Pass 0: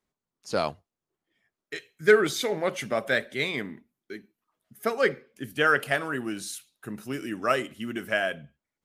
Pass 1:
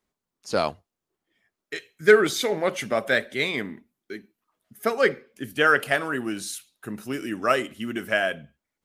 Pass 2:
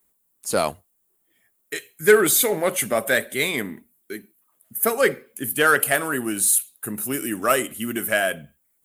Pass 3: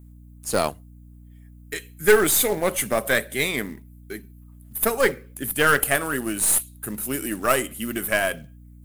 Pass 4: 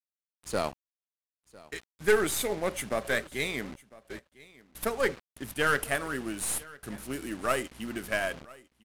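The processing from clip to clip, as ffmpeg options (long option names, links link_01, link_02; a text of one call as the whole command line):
ffmpeg -i in.wav -af "equalizer=frequency=140:width=4.3:gain=-4,volume=3dB" out.wav
ffmpeg -i in.wav -filter_complex "[0:a]aexciter=amount=9.8:drive=3.4:freq=7700,asplit=2[link_01][link_02];[link_02]asoftclip=type=tanh:threshold=-17dB,volume=-5dB[link_03];[link_01][link_03]amix=inputs=2:normalize=0,volume=-1dB" out.wav
ffmpeg -i in.wav -af "acrusher=bits=5:mode=log:mix=0:aa=0.000001,aeval=exprs='0.891*(cos(1*acos(clip(val(0)/0.891,-1,1)))-cos(1*PI/2))+0.0708*(cos(6*acos(clip(val(0)/0.891,-1,1)))-cos(6*PI/2))':channel_layout=same,aeval=exprs='val(0)+0.00708*(sin(2*PI*60*n/s)+sin(2*PI*2*60*n/s)/2+sin(2*PI*3*60*n/s)/3+sin(2*PI*4*60*n/s)/4+sin(2*PI*5*60*n/s)/5)':channel_layout=same,volume=-1.5dB" out.wav
ffmpeg -i in.wav -af "acrusher=bits=5:mix=0:aa=0.000001,adynamicsmooth=sensitivity=6:basefreq=4200,aecho=1:1:1002:0.0794,volume=-7.5dB" out.wav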